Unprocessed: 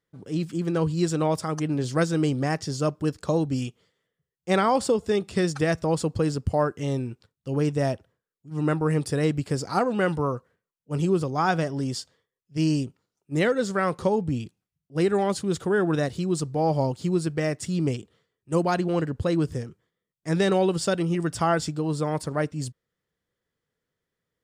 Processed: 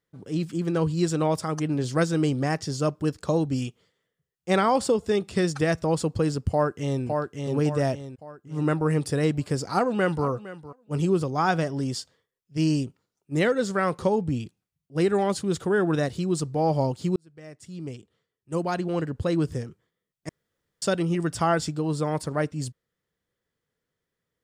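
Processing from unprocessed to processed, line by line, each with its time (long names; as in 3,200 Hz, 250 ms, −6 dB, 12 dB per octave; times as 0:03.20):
0:06.50–0:07.03: delay throw 560 ms, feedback 40%, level −4 dB
0:09.72–0:10.26: delay throw 460 ms, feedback 10%, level −16 dB
0:17.16–0:19.50: fade in
0:20.29–0:20.82: fill with room tone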